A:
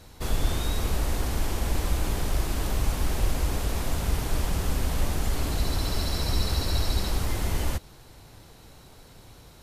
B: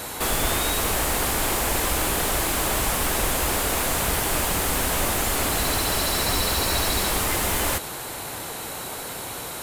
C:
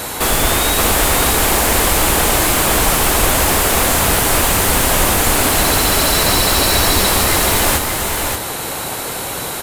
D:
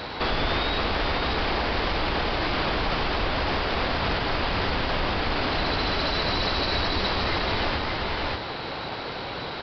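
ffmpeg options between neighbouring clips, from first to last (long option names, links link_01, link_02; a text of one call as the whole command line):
ffmpeg -i in.wav -filter_complex "[0:a]aexciter=amount=5.6:drive=3.4:freq=7300,asplit=2[link_01][link_02];[link_02]highpass=frequency=720:poles=1,volume=30dB,asoftclip=type=tanh:threshold=-10dB[link_03];[link_01][link_03]amix=inputs=2:normalize=0,lowpass=frequency=2600:poles=1,volume=-6dB" out.wav
ffmpeg -i in.wav -af "aecho=1:1:578:0.562,volume=8.5dB" out.wav
ffmpeg -i in.wav -af "alimiter=limit=-7.5dB:level=0:latency=1:release=49,aresample=11025,aresample=44100,volume=-7dB" out.wav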